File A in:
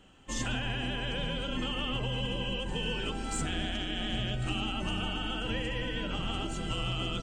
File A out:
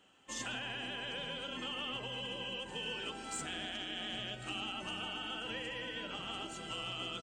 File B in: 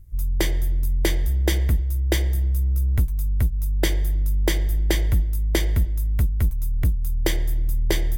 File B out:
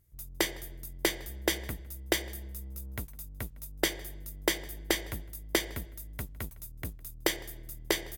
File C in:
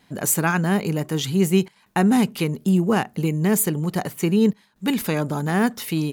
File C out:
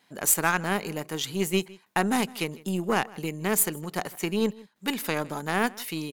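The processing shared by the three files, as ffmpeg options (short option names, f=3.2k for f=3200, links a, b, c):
-filter_complex "[0:a]highpass=f=490:p=1,aeval=exprs='0.447*(cos(1*acos(clip(val(0)/0.447,-1,1)))-cos(1*PI/2))+0.0158*(cos(4*acos(clip(val(0)/0.447,-1,1)))-cos(4*PI/2))+0.0141*(cos(6*acos(clip(val(0)/0.447,-1,1)))-cos(6*PI/2))+0.0251*(cos(7*acos(clip(val(0)/0.447,-1,1)))-cos(7*PI/2))':c=same,asplit=2[a][b];[b]adelay=157.4,volume=-22dB,highshelf=f=4k:g=-3.54[c];[a][c]amix=inputs=2:normalize=0"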